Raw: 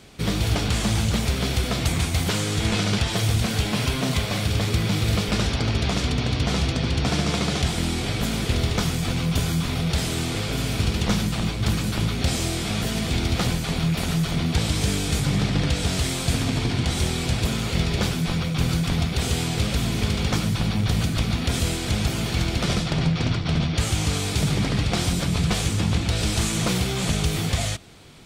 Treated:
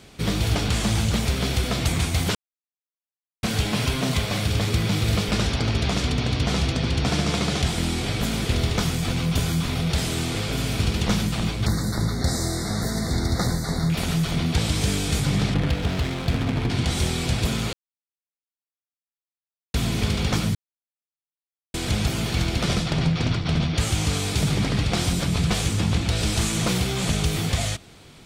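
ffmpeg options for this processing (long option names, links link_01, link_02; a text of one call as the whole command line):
ffmpeg -i in.wav -filter_complex "[0:a]asettb=1/sr,asplit=3[link_01][link_02][link_03];[link_01]atrim=end=11.664[link_04];[link_02]atrim=start=11.66:end=13.9,asetpts=PTS-STARTPTS,afade=type=in:duration=0.004:curve=qsin,afade=type=out:start_time=2.236:duration=0.004:curve=qsin,asuperstop=centerf=2800:order=12:qfactor=1.8[link_05];[link_03]atrim=start=13.896[link_06];[link_04][link_05]acrossfade=duration=0.004:curve1=hsin:curve2=qsin[link_07];[link_07][link_06]acrossfade=duration=0.004:curve1=qsin:curve2=hsin,asettb=1/sr,asplit=3[link_08][link_09][link_10];[link_08]atrim=end=15.544[link_11];[link_09]atrim=start=15.54:end=16.7,asetpts=PTS-STARTPTS,afade=type=in:duration=0.004:curve=qsin,afade=type=out:start_time=1.156:duration=0.004:curve=qsin,adynamicsmooth=sensitivity=3:basefreq=1300[link_12];[link_10]atrim=start=16.696[link_13];[link_11][link_12]acrossfade=duration=0.004:curve1=hsin:curve2=qsin[link_14];[link_14][link_13]acrossfade=duration=0.004:curve1=qsin:curve2=hsin,asplit=7[link_15][link_16][link_17][link_18][link_19][link_20][link_21];[link_15]atrim=end=2.35,asetpts=PTS-STARTPTS,afade=type=out:start_time=2.346:duration=0.004:curve=hsin[link_22];[link_16]atrim=start=2.35:end=3.43,asetpts=PTS-STARTPTS,volume=0[link_23];[link_17]atrim=start=3.43:end=17.73,asetpts=PTS-STARTPTS,afade=type=in:duration=0.004:curve=hsin,afade=type=out:start_time=14.296:duration=0.004:curve=hsin[link_24];[link_18]atrim=start=17.73:end=19.74,asetpts=PTS-STARTPTS,volume=0[link_25];[link_19]atrim=start=19.74:end=20.55,asetpts=PTS-STARTPTS,afade=type=in:duration=0.004:curve=hsin,afade=type=out:start_time=0.806:duration=0.004:curve=hsin[link_26];[link_20]atrim=start=20.55:end=21.74,asetpts=PTS-STARTPTS,volume=0[link_27];[link_21]atrim=start=21.74,asetpts=PTS-STARTPTS,afade=type=in:duration=0.004:curve=hsin[link_28];[link_22][link_23][link_24][link_25][link_26][link_27][link_28]concat=n=7:v=0:a=1" out.wav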